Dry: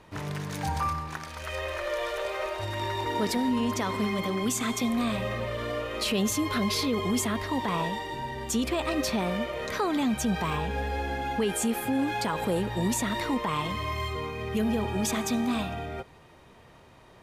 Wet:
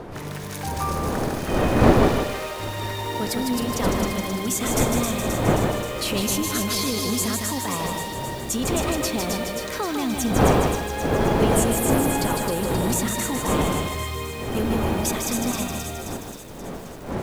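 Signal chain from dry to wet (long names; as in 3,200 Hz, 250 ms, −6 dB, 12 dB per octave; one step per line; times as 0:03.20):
wind on the microphone 510 Hz −27 dBFS
high-shelf EQ 8,600 Hz +11 dB
delay with a high-pass on its return 265 ms, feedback 64%, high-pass 3,600 Hz, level −3.5 dB
feedback echo at a low word length 154 ms, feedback 35%, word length 7 bits, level −4 dB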